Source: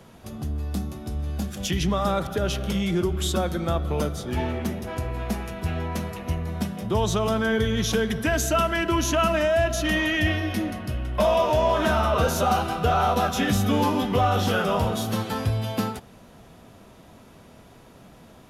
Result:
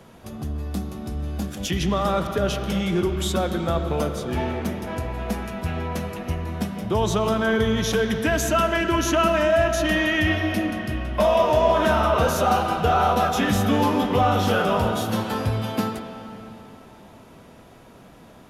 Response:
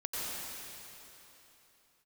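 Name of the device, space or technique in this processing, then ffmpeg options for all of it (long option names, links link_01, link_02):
filtered reverb send: -filter_complex "[0:a]asplit=2[link_01][link_02];[link_02]highpass=150,lowpass=3500[link_03];[1:a]atrim=start_sample=2205[link_04];[link_03][link_04]afir=irnorm=-1:irlink=0,volume=-9.5dB[link_05];[link_01][link_05]amix=inputs=2:normalize=0"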